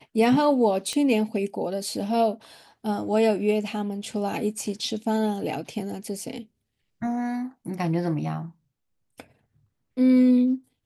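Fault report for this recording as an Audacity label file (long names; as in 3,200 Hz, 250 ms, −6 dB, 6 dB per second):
0.930000	0.930000	click −16 dBFS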